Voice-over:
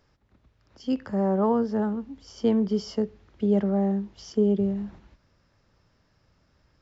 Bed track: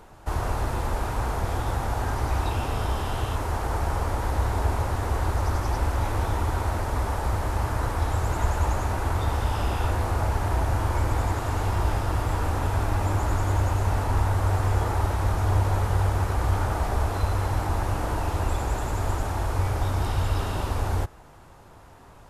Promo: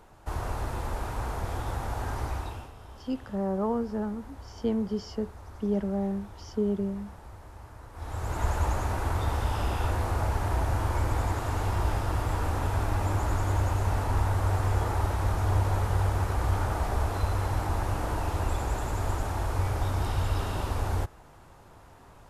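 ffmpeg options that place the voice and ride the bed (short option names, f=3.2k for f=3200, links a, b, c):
-filter_complex "[0:a]adelay=2200,volume=-5.5dB[a];[1:a]volume=12dB,afade=t=out:st=2.22:d=0.5:silence=0.177828,afade=t=in:st=7.92:d=0.57:silence=0.133352[b];[a][b]amix=inputs=2:normalize=0"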